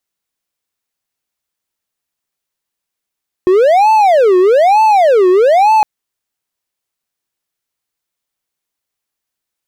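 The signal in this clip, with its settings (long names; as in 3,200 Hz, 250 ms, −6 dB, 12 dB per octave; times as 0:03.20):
siren wail 362–879 Hz 1.1 per second triangle −3.5 dBFS 2.36 s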